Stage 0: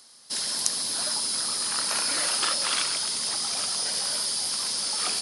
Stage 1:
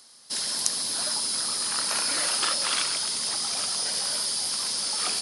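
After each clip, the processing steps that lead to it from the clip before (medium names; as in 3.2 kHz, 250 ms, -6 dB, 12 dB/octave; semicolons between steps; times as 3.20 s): no audible change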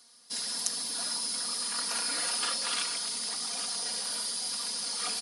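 comb 4.2 ms, depth 88%; trim -8 dB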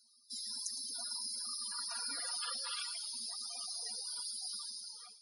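fade out at the end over 0.69 s; loudest bins only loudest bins 64; feedback echo behind a high-pass 110 ms, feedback 62%, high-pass 3.8 kHz, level -11 dB; trim -7 dB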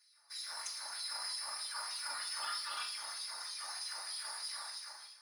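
in parallel at -7 dB: sample-rate reducer 3.1 kHz, jitter 20%; on the sum: LFO high-pass sine 3.2 Hz 820–3500 Hz; simulated room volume 930 m³, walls furnished, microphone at 2.5 m; trim -5.5 dB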